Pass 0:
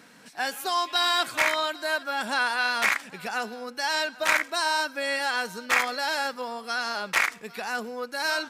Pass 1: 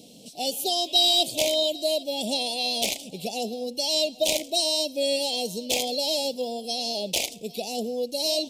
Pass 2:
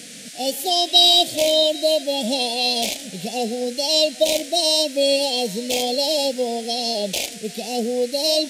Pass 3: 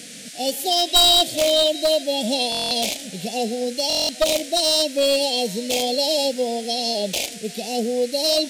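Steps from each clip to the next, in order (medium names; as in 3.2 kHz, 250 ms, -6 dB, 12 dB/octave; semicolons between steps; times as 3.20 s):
elliptic band-stop 650–3100 Hz, stop band 60 dB; trim +7 dB
band noise 1.7–10 kHz -44 dBFS; harmonic-percussive split harmonic +9 dB; trim -2 dB
one-sided wavefolder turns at -12.5 dBFS; buffer glitch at 2.50/3.88 s, samples 1024, times 8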